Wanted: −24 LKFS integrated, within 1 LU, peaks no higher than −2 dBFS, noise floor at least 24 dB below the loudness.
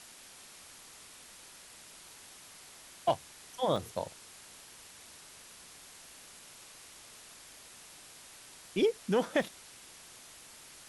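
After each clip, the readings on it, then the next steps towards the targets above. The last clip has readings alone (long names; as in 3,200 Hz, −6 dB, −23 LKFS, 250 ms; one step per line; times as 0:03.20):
number of dropouts 2; longest dropout 1.6 ms; background noise floor −54 dBFS; target noise floor −58 dBFS; integrated loudness −33.5 LKFS; sample peak −17.0 dBFS; target loudness −24.0 LKFS
→ repair the gap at 0:03.76/0:09.42, 1.6 ms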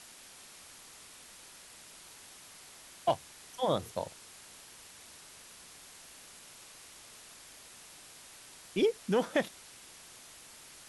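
number of dropouts 0; background noise floor −54 dBFS; target noise floor −58 dBFS
→ broadband denoise 6 dB, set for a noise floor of −54 dBFS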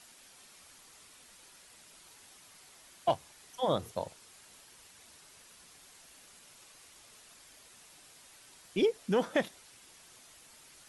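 background noise floor −58 dBFS; integrated loudness −33.0 LKFS; sample peak −17.0 dBFS; target loudness −24.0 LKFS
→ level +9 dB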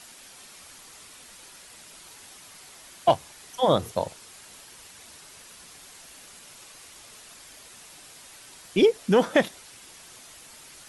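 integrated loudness −24.0 LKFS; sample peak −8.0 dBFS; background noise floor −49 dBFS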